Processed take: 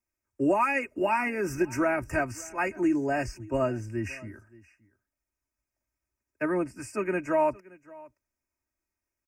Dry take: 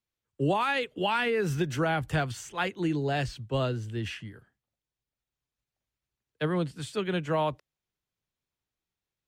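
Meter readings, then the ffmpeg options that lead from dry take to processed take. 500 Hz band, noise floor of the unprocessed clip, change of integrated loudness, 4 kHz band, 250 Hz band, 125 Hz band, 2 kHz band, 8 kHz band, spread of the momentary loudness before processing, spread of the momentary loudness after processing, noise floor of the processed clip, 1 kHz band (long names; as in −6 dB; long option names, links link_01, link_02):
+2.0 dB, below −85 dBFS, +1.0 dB, −13.0 dB, +3.0 dB, −7.0 dB, +1.0 dB, +2.5 dB, 8 LU, 9 LU, below −85 dBFS, +1.5 dB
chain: -af "asuperstop=centerf=3600:order=12:qfactor=1.6,aecho=1:1:3.2:0.83,aecho=1:1:573:0.075"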